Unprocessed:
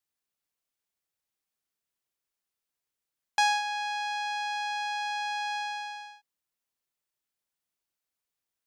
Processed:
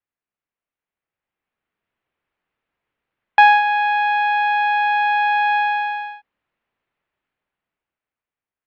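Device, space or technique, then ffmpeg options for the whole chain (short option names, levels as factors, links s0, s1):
action camera in a waterproof case: -af "lowpass=f=2600:w=0.5412,lowpass=f=2600:w=1.3066,dynaudnorm=f=240:g=13:m=5.31,volume=1.19" -ar 22050 -c:a aac -b:a 48k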